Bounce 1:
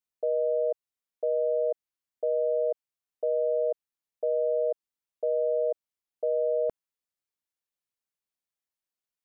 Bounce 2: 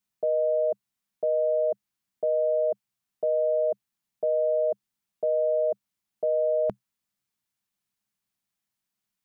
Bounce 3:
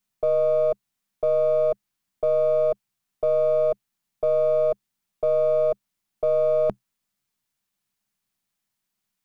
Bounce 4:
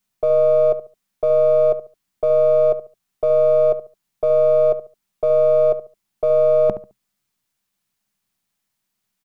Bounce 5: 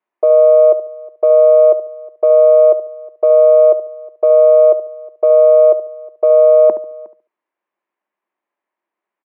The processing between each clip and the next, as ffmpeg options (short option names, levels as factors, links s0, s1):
-af "equalizer=f=125:t=o:w=0.33:g=9,equalizer=f=200:t=o:w=0.33:g=12,equalizer=f=500:t=o:w=0.33:g=-10,volume=2.11"
-af "aeval=exprs='if(lt(val(0),0),0.708*val(0),val(0))':c=same,volume=1.78"
-filter_complex "[0:a]asplit=2[s0][s1];[s1]adelay=71,lowpass=f=1300:p=1,volume=0.282,asplit=2[s2][s3];[s3]adelay=71,lowpass=f=1300:p=1,volume=0.27,asplit=2[s4][s5];[s5]adelay=71,lowpass=f=1300:p=1,volume=0.27[s6];[s0][s2][s4][s6]amix=inputs=4:normalize=0,volume=1.58"
-filter_complex "[0:a]highpass=f=320:w=0.5412,highpass=f=320:w=1.3066,equalizer=f=340:t=q:w=4:g=7,equalizer=f=570:t=q:w=4:g=6,equalizer=f=1000:t=q:w=4:g=6,equalizer=f=1400:t=q:w=4:g=-4,lowpass=f=2100:w=0.5412,lowpass=f=2100:w=1.3066,asplit=2[s0][s1];[s1]adelay=361.5,volume=0.0708,highshelf=f=4000:g=-8.13[s2];[s0][s2]amix=inputs=2:normalize=0,volume=1.33"